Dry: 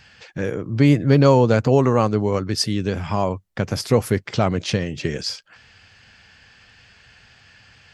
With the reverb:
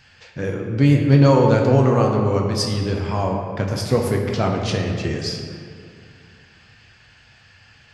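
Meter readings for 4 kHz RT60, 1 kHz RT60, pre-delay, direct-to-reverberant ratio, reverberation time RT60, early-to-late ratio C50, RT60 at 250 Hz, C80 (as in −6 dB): 1.2 s, 2.3 s, 8 ms, 0.5 dB, 2.3 s, 3.5 dB, 2.8 s, 4.5 dB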